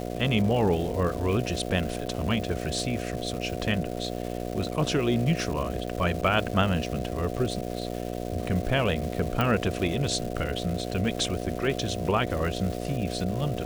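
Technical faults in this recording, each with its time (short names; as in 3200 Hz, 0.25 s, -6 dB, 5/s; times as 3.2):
buzz 60 Hz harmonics 12 -33 dBFS
crackle 560/s -34 dBFS
9.41 pop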